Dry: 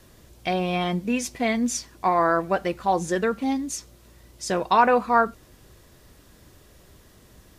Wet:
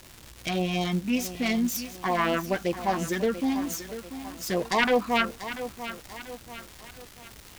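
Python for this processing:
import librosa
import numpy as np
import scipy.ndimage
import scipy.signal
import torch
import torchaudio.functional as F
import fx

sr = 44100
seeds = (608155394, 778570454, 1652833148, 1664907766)

y = fx.self_delay(x, sr, depth_ms=0.23)
y = fx.filter_lfo_notch(y, sr, shape='sine', hz=5.3, low_hz=480.0, high_hz=1600.0, q=0.73)
y = fx.dmg_crackle(y, sr, seeds[0], per_s=450.0, level_db=-34.0)
y = fx.echo_crushed(y, sr, ms=689, feedback_pct=55, bits=7, wet_db=-11.5)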